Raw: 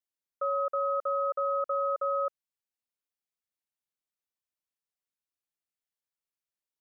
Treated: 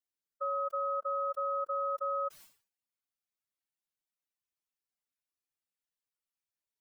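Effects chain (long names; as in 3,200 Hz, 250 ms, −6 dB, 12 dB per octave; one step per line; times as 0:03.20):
expanding power law on the bin magnitudes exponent 2.1
parametric band 530 Hz −3 dB 0.77 octaves
level that may fall only so fast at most 140 dB per second
level −2.5 dB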